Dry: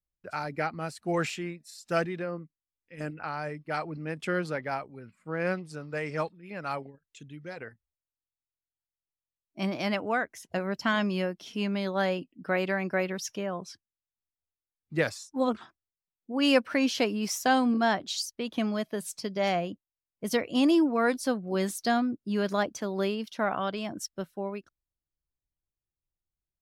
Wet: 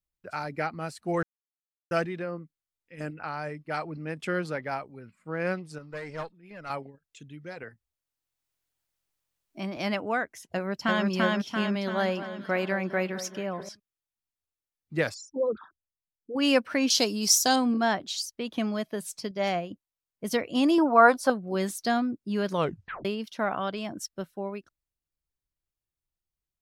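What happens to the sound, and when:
1.23–1.91 mute
5.78–6.7 tube stage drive 27 dB, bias 0.75
7.63–9.77 three-band squash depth 40%
10.5–11.07 echo throw 0.34 s, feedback 55%, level -0.5 dB
11.68–13.69 echo with dull and thin repeats by turns 0.215 s, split 1600 Hz, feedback 61%, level -12 dB
15.14–16.36 formant sharpening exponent 3
16.9–17.56 resonant high shelf 3300 Hz +10.5 dB, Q 1.5
19.31–19.71 upward expander, over -38 dBFS
20.78–21.3 band shelf 920 Hz +12 dB
22.5 tape stop 0.55 s

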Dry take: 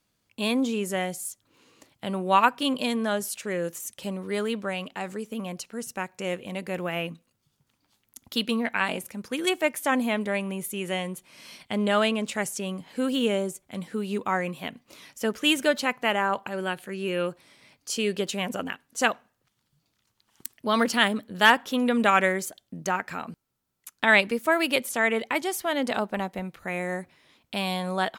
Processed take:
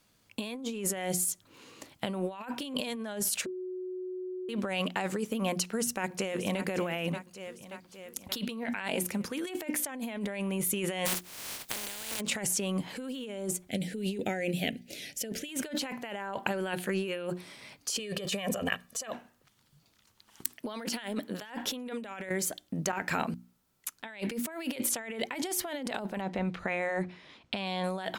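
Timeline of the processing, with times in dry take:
3.46–4.49 bleep 368 Hz -22 dBFS
5.52–6.63 echo throw 0.58 s, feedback 60%, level -14.5 dB
11.05–12.19 spectral contrast lowered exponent 0.16
13.69–15.49 Butterworth band-stop 1100 Hz, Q 0.95
17.99–19.11 comb 1.7 ms
20.51–21.42 HPF 220 Hz
22.29–22.93 compressor, threshold -33 dBFS
26.21–27.84 LPF 5100 Hz
whole clip: notches 60/120/180/240/300/360 Hz; dynamic EQ 1200 Hz, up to -8 dB, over -44 dBFS, Q 4.9; negative-ratio compressor -35 dBFS, ratio -1

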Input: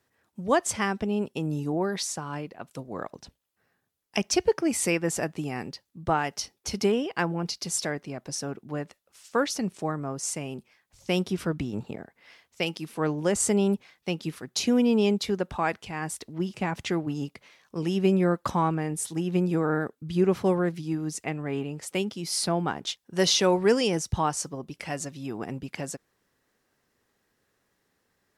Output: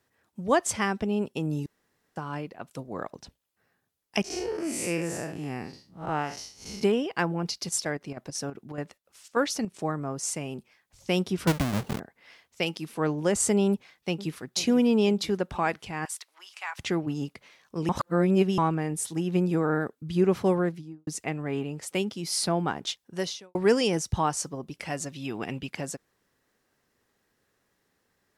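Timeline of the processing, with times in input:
1.66–2.16 room tone
4.24–6.83 time blur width 0.142 s
7.67–9.73 chopper 7.9 Hz -> 2.3 Hz, depth 60%, duty 75%
11.47–12 half-waves squared off
13.69–14.42 echo throw 0.49 s, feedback 60%, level -15 dB
16.05–16.79 HPF 990 Hz 24 dB/oct
17.89–18.58 reverse
20.58–21.07 studio fade out
23.05–23.55 fade out quadratic
25.12–25.66 bell 2900 Hz +7.5 dB -> +14 dB 1.1 oct

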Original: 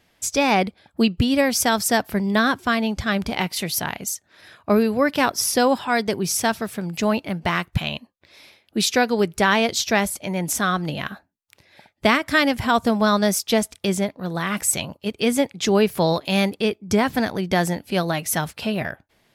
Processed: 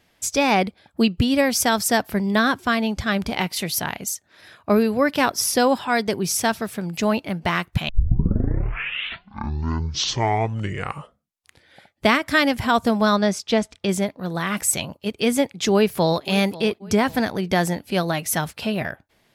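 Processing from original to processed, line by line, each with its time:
7.89 tape start 4.17 s
13.16–13.89 air absorption 87 m
15.72–16.24 echo throw 0.54 s, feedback 40%, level -18 dB

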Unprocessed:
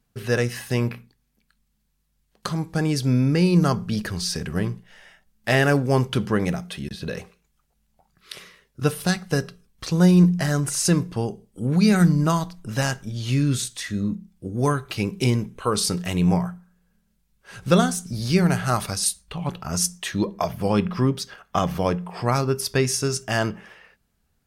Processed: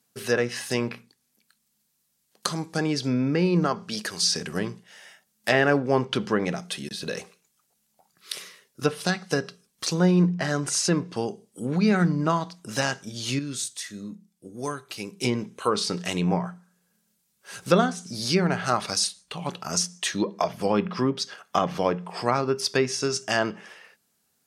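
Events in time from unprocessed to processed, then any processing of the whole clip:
3.66–4.23 low shelf 280 Hz -9 dB
13.39–15.24 gain -8 dB
whole clip: HPF 180 Hz 12 dB/oct; treble ducked by the level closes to 2300 Hz, closed at -18 dBFS; tone controls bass -3 dB, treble +9 dB

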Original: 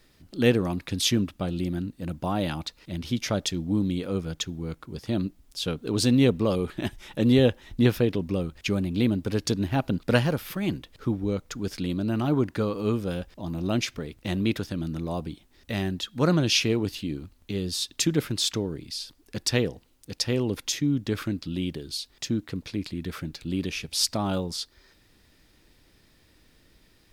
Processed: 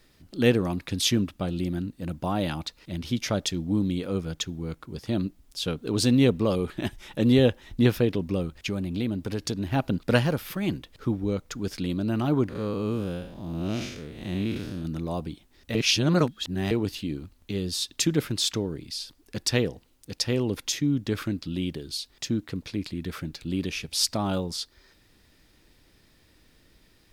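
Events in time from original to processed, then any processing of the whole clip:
8.57–9.67 compressor 2:1, threshold -27 dBFS
12.49–14.85 time blur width 0.181 s
15.75–16.71 reverse

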